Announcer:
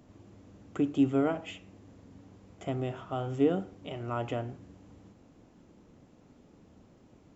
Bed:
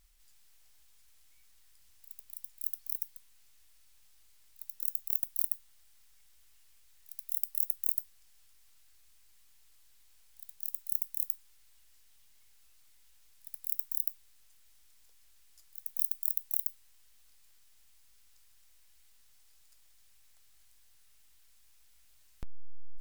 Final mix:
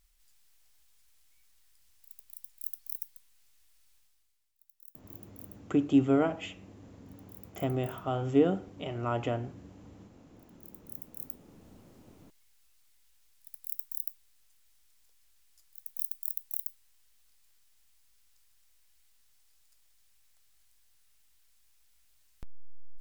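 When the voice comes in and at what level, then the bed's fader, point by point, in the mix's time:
4.95 s, +2.0 dB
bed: 3.95 s -2.5 dB
4.54 s -19 dB
10.31 s -19 dB
11.69 s -3.5 dB

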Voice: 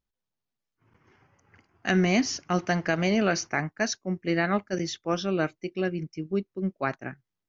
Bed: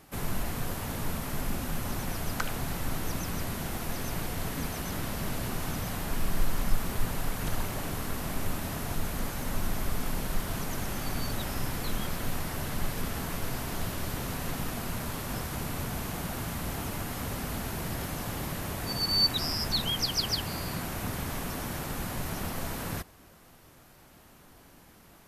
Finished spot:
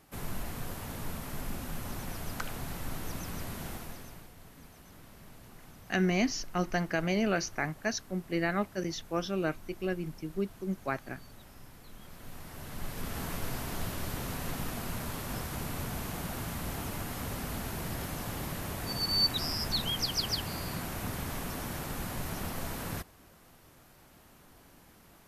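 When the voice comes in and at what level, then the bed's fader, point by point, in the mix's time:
4.05 s, -5.0 dB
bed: 3.71 s -5.5 dB
4.33 s -19.5 dB
11.89 s -19.5 dB
13.22 s -2.5 dB

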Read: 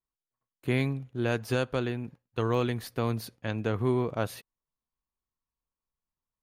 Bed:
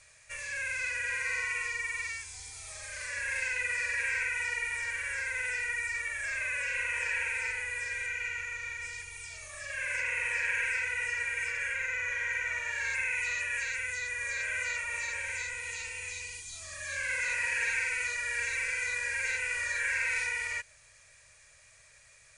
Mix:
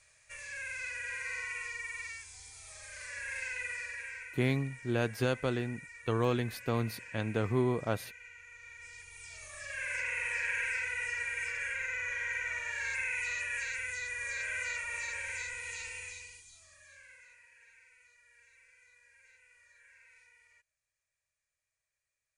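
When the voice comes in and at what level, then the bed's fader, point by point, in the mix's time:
3.70 s, -2.5 dB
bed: 3.66 s -6 dB
4.41 s -16.5 dB
8.38 s -16.5 dB
9.43 s -3 dB
15.96 s -3 dB
17.49 s -30.5 dB

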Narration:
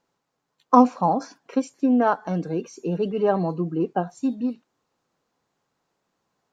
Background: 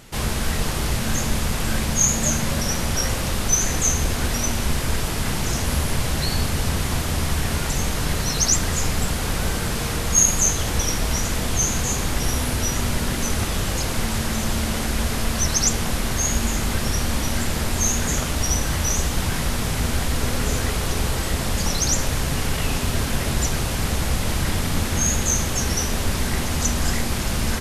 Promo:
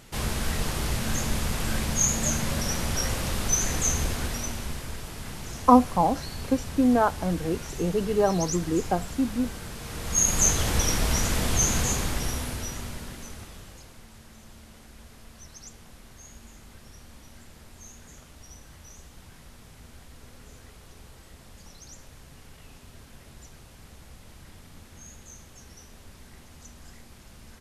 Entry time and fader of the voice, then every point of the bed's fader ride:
4.95 s, -1.5 dB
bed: 4.01 s -5 dB
4.96 s -14 dB
9.81 s -14 dB
10.44 s -2 dB
11.82 s -2 dB
14.03 s -26 dB

